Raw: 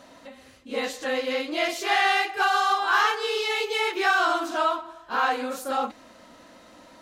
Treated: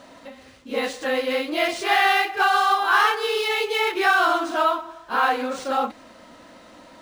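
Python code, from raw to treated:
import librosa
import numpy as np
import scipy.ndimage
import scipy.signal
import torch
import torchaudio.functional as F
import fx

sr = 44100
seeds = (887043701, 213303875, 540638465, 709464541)

y = fx.quant_dither(x, sr, seeds[0], bits=10, dither='none')
y = np.interp(np.arange(len(y)), np.arange(len(y))[::3], y[::3])
y = y * 10.0 ** (3.5 / 20.0)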